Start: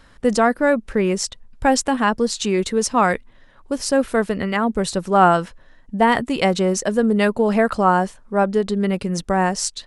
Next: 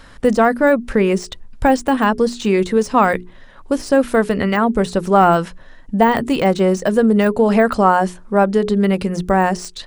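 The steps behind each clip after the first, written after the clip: in parallel at +1 dB: compressor, threshold -24 dBFS, peak gain reduction 15 dB; on the sum: notches 60/120/180/240/300/360/420 Hz; de-esser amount 65%; gain +1.5 dB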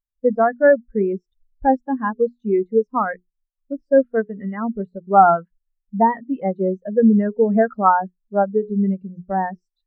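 dynamic EQ 1800 Hz, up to +6 dB, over -28 dBFS, Q 0.88; spectral expander 2.5:1; gain -3 dB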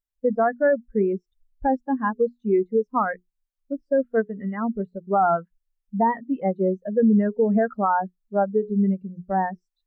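limiter -10.5 dBFS, peak gain reduction 9 dB; gain -1.5 dB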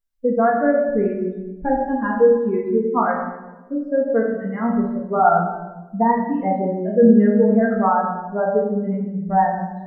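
resonator 59 Hz, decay 0.37 s, harmonics all, mix 80%; shoebox room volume 650 m³, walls mixed, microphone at 1.7 m; gain +7 dB

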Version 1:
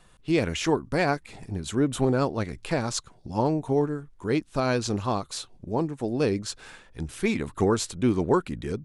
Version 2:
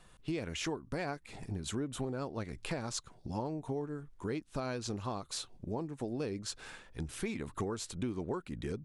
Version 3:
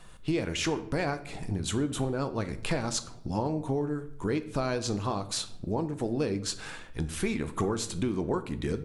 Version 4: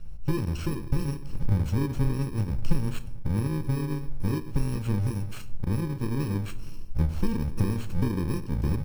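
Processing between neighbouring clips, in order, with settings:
compressor 6:1, threshold -31 dBFS, peak gain reduction 14 dB; gain -3 dB
reverb RT60 0.65 s, pre-delay 6 ms, DRR 10 dB; gain +7 dB
FFT order left unsorted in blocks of 64 samples; RIAA curve playback; gain -3 dB

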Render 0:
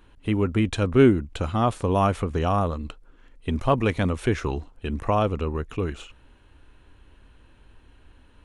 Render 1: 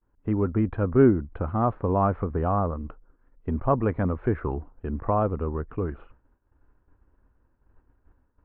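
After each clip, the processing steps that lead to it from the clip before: expander -43 dBFS; LPF 1500 Hz 24 dB/oct; gain -1.5 dB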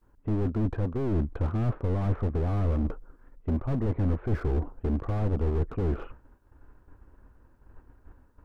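reverse; compressor 10:1, threshold -31 dBFS, peak gain reduction 18.5 dB; reverse; dynamic EQ 380 Hz, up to +6 dB, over -50 dBFS, Q 1.2; slew limiter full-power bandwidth 5.1 Hz; gain +8.5 dB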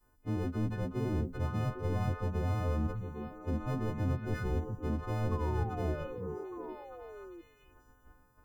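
frequency quantiser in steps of 3 st; painted sound fall, 5.31–6.61, 330–1100 Hz -38 dBFS; delay with a stepping band-pass 0.402 s, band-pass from 150 Hz, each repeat 1.4 oct, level -1.5 dB; gain -5.5 dB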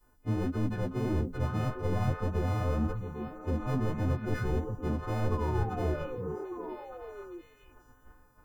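flange 1.7 Hz, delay 1.6 ms, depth 7.2 ms, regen +59%; gain +7.5 dB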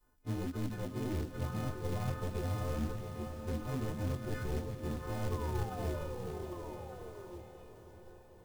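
short-mantissa float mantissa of 2-bit; on a send: diffused feedback echo 0.594 s, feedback 56%, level -9.5 dB; on the sum: gain -6.5 dB

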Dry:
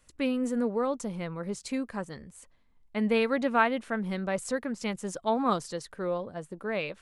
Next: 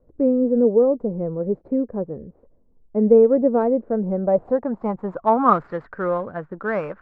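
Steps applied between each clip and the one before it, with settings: median filter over 15 samples; low-pass sweep 480 Hz -> 1500 Hz, 3.85–5.64; gain +7 dB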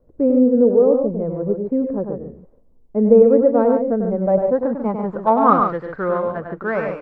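loudspeakers at several distances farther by 34 m -6 dB, 49 m -7 dB; gain +1.5 dB

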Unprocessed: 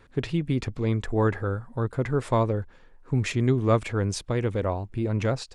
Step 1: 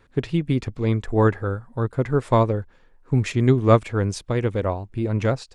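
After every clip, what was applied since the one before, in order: upward expander 1.5:1, over -35 dBFS; gain +7 dB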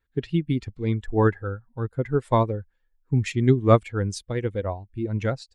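per-bin expansion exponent 1.5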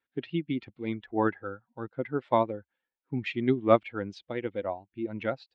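speaker cabinet 290–3400 Hz, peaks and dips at 440 Hz -8 dB, 1100 Hz -5 dB, 1700 Hz -5 dB

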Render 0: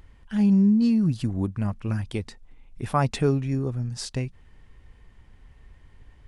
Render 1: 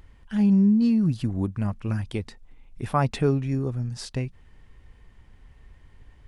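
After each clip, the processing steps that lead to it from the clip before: dynamic EQ 7300 Hz, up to -5 dB, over -50 dBFS, Q 0.82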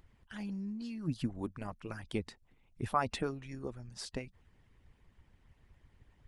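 harmonic-percussive split harmonic -17 dB; gain -4.5 dB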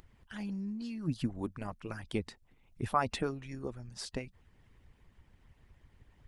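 upward compressor, threshold -58 dBFS; gain +1.5 dB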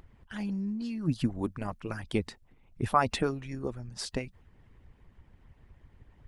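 mismatched tape noise reduction decoder only; gain +5 dB

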